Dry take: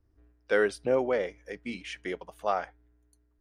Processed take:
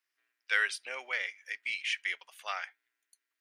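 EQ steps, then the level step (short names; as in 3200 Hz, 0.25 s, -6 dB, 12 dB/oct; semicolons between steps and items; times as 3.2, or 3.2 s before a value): resonant high-pass 2200 Hz, resonance Q 1.8; +3.5 dB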